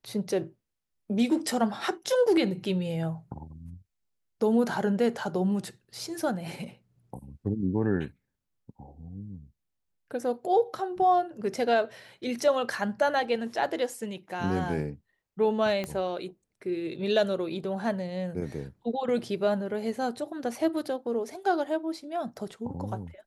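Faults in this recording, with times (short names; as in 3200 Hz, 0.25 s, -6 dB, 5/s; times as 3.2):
15.84 pop -19 dBFS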